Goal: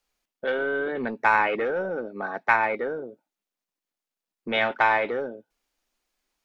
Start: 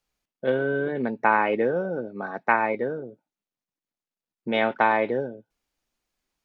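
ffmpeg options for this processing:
ffmpeg -i in.wav -filter_complex "[0:a]equalizer=frequency=100:width_type=o:width=1.7:gain=-13,acrossover=split=940[link_01][link_02];[link_01]asoftclip=type=tanh:threshold=-27dB[link_03];[link_03][link_02]amix=inputs=2:normalize=0,volume=3dB" out.wav

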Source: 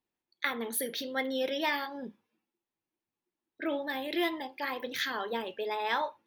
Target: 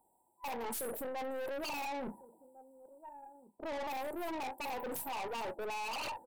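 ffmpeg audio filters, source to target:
ffmpeg -i in.wav -filter_complex "[0:a]aemphasis=mode=reproduction:type=75kf,afftfilt=real='re*(1-between(b*sr/4096,1000,7400))':imag='im*(1-between(b*sr/4096,1000,7400))':win_size=4096:overlap=0.75,adynamicequalizer=threshold=0.00447:dfrequency=990:dqfactor=0.8:tfrequency=990:tqfactor=0.8:attack=5:release=100:ratio=0.375:range=2:mode=cutabove:tftype=bell,areverse,acompressor=threshold=-43dB:ratio=10,areverse,asplit=2[link_01][link_02];[link_02]adelay=1399,volume=-26dB,highshelf=frequency=4000:gain=-31.5[link_03];[link_01][link_03]amix=inputs=2:normalize=0,acrossover=split=930[link_04][link_05];[link_05]aeval=exprs='0.01*sin(PI/2*8.91*val(0)/0.01)':channel_layout=same[link_06];[link_04][link_06]amix=inputs=2:normalize=0,aeval=exprs='(tanh(224*val(0)+0.3)-tanh(0.3))/224':channel_layout=same,volume=9.5dB" out.wav

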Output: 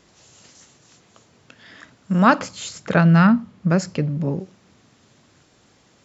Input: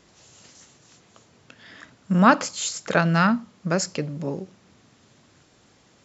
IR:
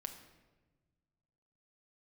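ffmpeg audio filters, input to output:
-filter_complex "[0:a]asettb=1/sr,asplit=3[link_01][link_02][link_03];[link_01]atrim=end=2.394[link_04];[link_02]atrim=start=2.39:end=4.4,asetpts=PTS-STARTPTS,afade=type=in:duration=0.004:curve=qsin,afade=type=out:start_time=2.006:duration=0.004:curve=qsin,bass=frequency=250:gain=9,treble=frequency=4000:gain=-8[link_05];[link_03]atrim=start=4.396[link_06];[link_04][link_05]acrossfade=duration=0.004:curve1=hsin:curve2=qsin[link_07];[link_07][link_06]acrossfade=duration=0.004:curve1=qsin:curve2=hsin,volume=1dB"

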